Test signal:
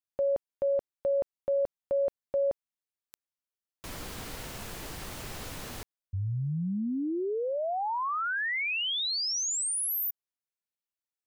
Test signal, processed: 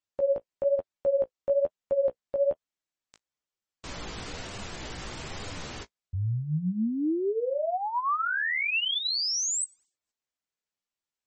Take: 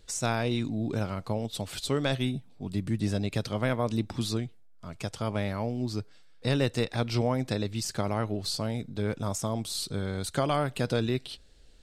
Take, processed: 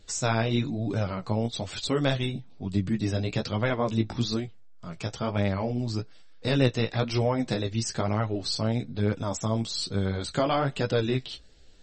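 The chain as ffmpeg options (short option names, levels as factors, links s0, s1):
-af "flanger=delay=9.9:depth=8.2:regen=16:speed=1.1:shape=sinusoidal,volume=2" -ar 44100 -c:a libmp3lame -b:a 32k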